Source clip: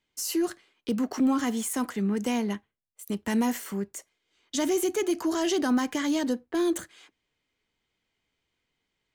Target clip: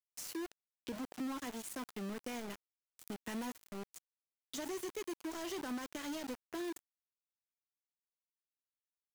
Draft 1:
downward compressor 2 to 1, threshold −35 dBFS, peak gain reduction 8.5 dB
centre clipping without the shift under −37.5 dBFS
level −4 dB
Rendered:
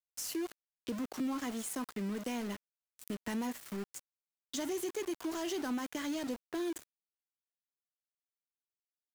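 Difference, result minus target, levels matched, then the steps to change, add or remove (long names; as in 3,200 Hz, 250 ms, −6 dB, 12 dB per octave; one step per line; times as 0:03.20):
downward compressor: peak gain reduction −4.5 dB
change: downward compressor 2 to 1, threshold −44 dBFS, peak gain reduction 13 dB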